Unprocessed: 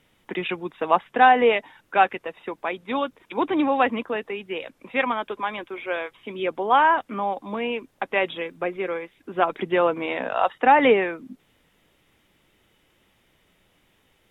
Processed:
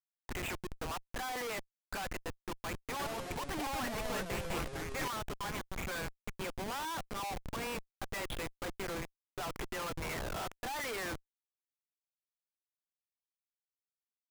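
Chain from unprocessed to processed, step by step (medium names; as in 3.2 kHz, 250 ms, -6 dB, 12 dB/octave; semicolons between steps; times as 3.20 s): Chebyshev high-pass 1.4 kHz, order 2; tilt EQ -3.5 dB/octave; Schmitt trigger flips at -39 dBFS; 2.90–5.08 s: ever faster or slower copies 92 ms, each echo -4 st, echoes 3; trim -6 dB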